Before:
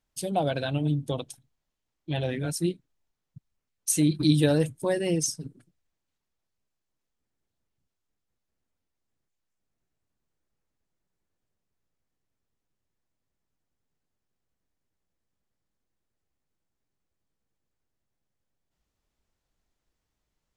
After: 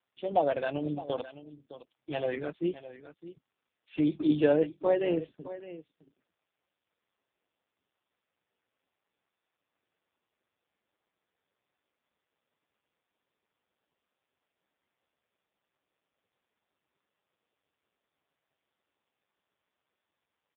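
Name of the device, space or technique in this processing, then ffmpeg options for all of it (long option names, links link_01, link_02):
satellite phone: -af "highpass=370,lowpass=3300,aecho=1:1:612:0.178,volume=2.5dB" -ar 8000 -c:a libopencore_amrnb -b:a 5150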